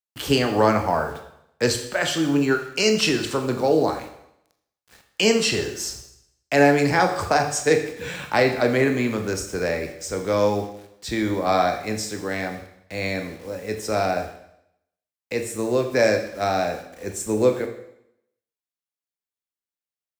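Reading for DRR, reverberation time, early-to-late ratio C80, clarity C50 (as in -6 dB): 5.0 dB, 0.80 s, 11.5 dB, 9.0 dB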